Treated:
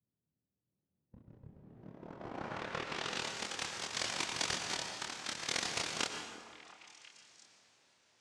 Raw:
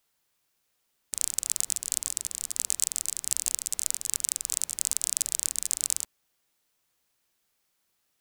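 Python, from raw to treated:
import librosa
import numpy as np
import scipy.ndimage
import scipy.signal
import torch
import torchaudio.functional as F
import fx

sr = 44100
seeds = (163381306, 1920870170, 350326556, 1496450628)

y = fx.spec_quant(x, sr, step_db=15)
y = fx.over_compress(y, sr, threshold_db=-34.0, ratio=-0.5)
y = fx.rotary(y, sr, hz=0.65)
y = fx.noise_vocoder(y, sr, seeds[0], bands=1)
y = fx.doubler(y, sr, ms=26.0, db=-2.5)
y = fx.echo_stepped(y, sr, ms=347, hz=350.0, octaves=1.4, feedback_pct=70, wet_db=-11.0)
y = fx.rev_plate(y, sr, seeds[1], rt60_s=1.7, hf_ratio=0.65, predelay_ms=85, drr_db=5.0)
y = fx.filter_sweep_lowpass(y, sr, from_hz=160.0, to_hz=6300.0, start_s=1.48, end_s=3.35, q=0.79)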